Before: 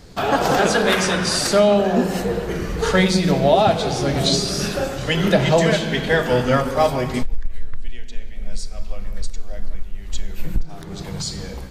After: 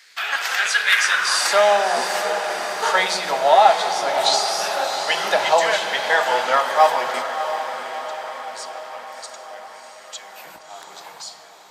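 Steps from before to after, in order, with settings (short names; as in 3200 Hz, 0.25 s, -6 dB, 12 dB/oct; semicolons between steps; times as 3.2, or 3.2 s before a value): ending faded out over 1.01 s; high-pass sweep 1900 Hz -> 870 Hz, 0.92–1.53; diffused feedback echo 0.674 s, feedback 58%, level -8.5 dB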